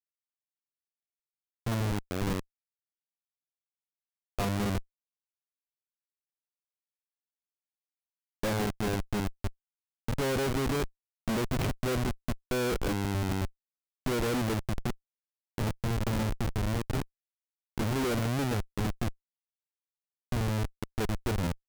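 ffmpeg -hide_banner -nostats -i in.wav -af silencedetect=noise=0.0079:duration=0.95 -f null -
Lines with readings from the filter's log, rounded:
silence_start: 0.00
silence_end: 1.66 | silence_duration: 1.66
silence_start: 2.40
silence_end: 4.39 | silence_duration: 1.98
silence_start: 4.81
silence_end: 8.43 | silence_duration: 3.63
silence_start: 19.11
silence_end: 20.32 | silence_duration: 1.21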